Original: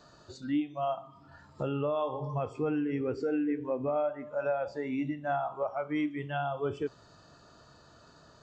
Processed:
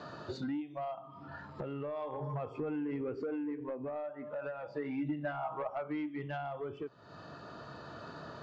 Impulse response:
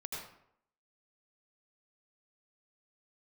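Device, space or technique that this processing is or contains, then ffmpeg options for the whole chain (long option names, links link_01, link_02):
AM radio: -filter_complex "[0:a]highpass=110,lowpass=3300,acompressor=threshold=-46dB:ratio=6,asoftclip=type=tanh:threshold=-40dB,tremolo=f=0.36:d=0.33,asettb=1/sr,asplit=3[link_01][link_02][link_03];[link_01]atrim=end=4.414[link_04];[link_02]atrim=start=4.41:end=5.7,asetpts=PTS-STARTPTS,afade=type=in:duration=0.004:curve=qsin,afade=type=out:start_time=1.286:duration=0.004:curve=qsin,aecho=1:1:6.4:0.61,atrim=end_sample=56889[link_05];[link_03]atrim=start=5.696[link_06];[link_04][link_05]acrossfade=duration=0.004:curve1=hsin:curve2=qsin[link_07];[link_07][link_06]acrossfade=duration=0.004:curve1=qsin:curve2=hsin,highshelf=frequency=6000:gain=-5,volume=12dB"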